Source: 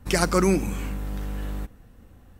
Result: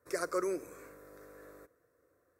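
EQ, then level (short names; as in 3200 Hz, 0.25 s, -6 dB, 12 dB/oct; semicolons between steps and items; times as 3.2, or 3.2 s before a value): HPF 500 Hz 12 dB/oct; tilt shelf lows +7 dB, about 640 Hz; fixed phaser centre 820 Hz, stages 6; -6.5 dB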